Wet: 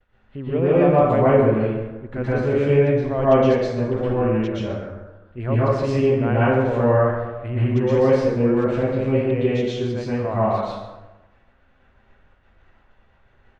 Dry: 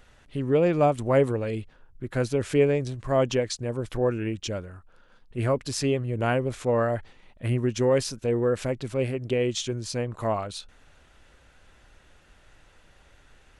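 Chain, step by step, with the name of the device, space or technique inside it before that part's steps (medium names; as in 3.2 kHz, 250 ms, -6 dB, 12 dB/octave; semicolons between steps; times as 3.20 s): hearing-loss simulation (low-pass 2.4 kHz 12 dB/octave; expander -48 dBFS); echo from a far wall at 24 m, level -13 dB; plate-style reverb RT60 1.1 s, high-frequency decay 0.55×, pre-delay 105 ms, DRR -9 dB; trim -3 dB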